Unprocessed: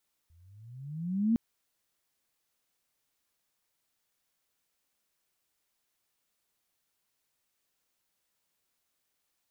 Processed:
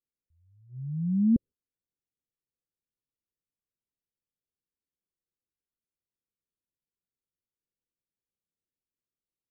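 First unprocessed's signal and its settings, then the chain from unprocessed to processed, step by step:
gliding synth tone sine, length 1.06 s, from 79.1 Hz, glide +19 st, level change +38 dB, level -21 dB
Chebyshev low-pass 530 Hz, order 6; gate -47 dBFS, range -14 dB; low shelf 430 Hz +8 dB

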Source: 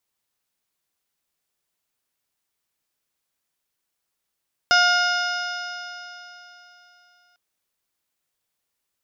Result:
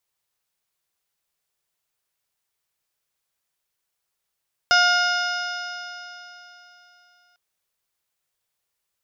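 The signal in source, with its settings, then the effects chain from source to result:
stretched partials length 2.65 s, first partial 710 Hz, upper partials 5/-9/-4/-7/-14/0.5/-11.5/-20 dB, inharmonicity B 0.0011, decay 3.38 s, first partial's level -20 dB
bell 260 Hz -10 dB 0.5 oct

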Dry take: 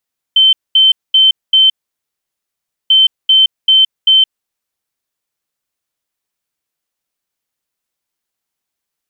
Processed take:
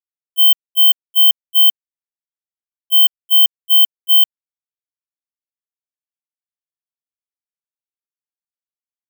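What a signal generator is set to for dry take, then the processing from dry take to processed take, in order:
beep pattern sine 3090 Hz, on 0.17 s, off 0.22 s, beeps 4, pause 1.20 s, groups 2, -4.5 dBFS
careless resampling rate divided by 2×, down none, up zero stuff; gate -4 dBFS, range -32 dB; bell 3100 Hz -5.5 dB

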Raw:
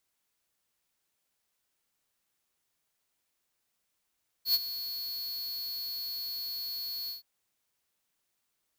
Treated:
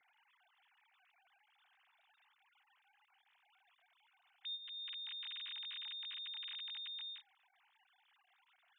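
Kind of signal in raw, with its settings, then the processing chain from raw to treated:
ADSR square 4370 Hz, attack 94 ms, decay 34 ms, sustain -13.5 dB, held 2.64 s, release 0.133 s -23.5 dBFS
sine-wave speech; compressor 4:1, threshold -47 dBFS

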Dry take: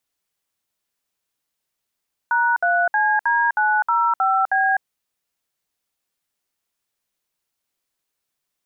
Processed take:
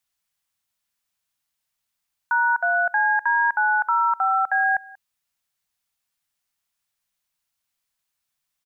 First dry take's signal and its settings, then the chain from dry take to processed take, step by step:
DTMF "#3CD905B", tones 0.253 s, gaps 62 ms, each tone -18 dBFS
bell 390 Hz -14 dB 1 oct; echo 0.186 s -23 dB

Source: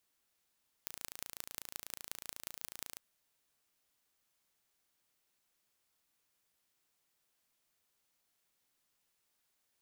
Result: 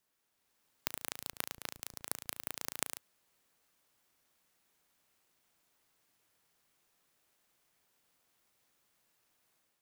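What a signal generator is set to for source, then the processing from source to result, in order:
pulse train 28.1/s, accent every 5, -12 dBFS 2.12 s
HPF 93 Hz 12 dB/oct; AGC gain up to 6 dB; clock jitter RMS 0.069 ms

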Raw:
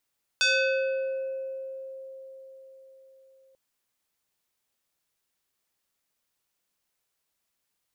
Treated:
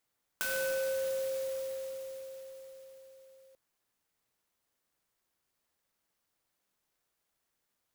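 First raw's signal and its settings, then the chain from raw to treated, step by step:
FM tone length 3.14 s, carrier 532 Hz, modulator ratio 3.84, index 2.6, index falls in 1.73 s exponential, decay 4.87 s, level -19 dB
compressor 3:1, threshold -32 dBFS; band shelf 3400 Hz -13 dB 1 oct; clock jitter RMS 0.069 ms

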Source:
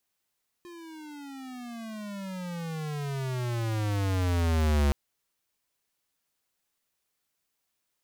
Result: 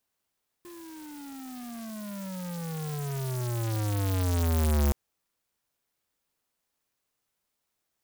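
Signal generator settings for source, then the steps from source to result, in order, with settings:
gliding synth tone square, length 4.27 s, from 353 Hz, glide -28 st, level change +23 dB, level -22.5 dB
clock jitter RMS 0.11 ms

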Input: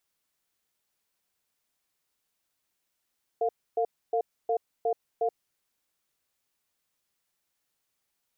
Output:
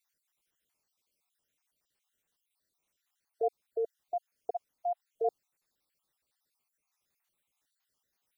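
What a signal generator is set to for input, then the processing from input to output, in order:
cadence 454 Hz, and 702 Hz, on 0.08 s, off 0.28 s, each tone -26 dBFS 1.94 s
random spectral dropouts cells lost 53%

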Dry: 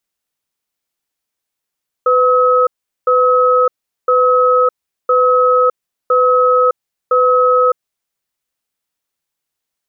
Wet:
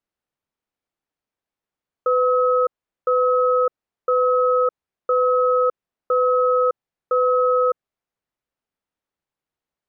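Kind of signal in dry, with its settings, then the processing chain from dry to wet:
cadence 502 Hz, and 1280 Hz, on 0.61 s, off 0.40 s, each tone -11 dBFS 5.79 s
limiter -9.5 dBFS; LPF 1100 Hz 6 dB/oct

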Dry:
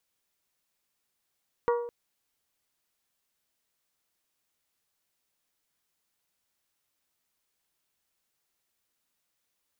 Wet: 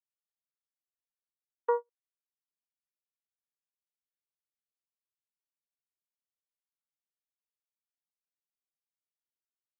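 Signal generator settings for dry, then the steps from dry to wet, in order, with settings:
glass hit bell, length 0.21 s, lowest mode 476 Hz, decay 0.77 s, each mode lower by 5 dB, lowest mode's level -21 dB
gate -28 dBFS, range -41 dB; HPF 470 Hz; comb 2.3 ms

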